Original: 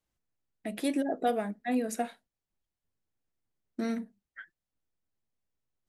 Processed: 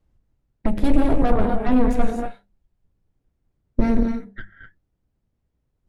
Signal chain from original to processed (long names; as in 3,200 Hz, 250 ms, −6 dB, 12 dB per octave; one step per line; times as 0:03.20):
reverb whose tail is shaped and stops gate 280 ms rising, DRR 6 dB
harmonic generator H 6 −11 dB, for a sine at −16 dBFS
brickwall limiter −24.5 dBFS, peak gain reduction 9.5 dB
spectral tilt −4 dB per octave
mains-hum notches 50/100/150/200 Hz
level +8.5 dB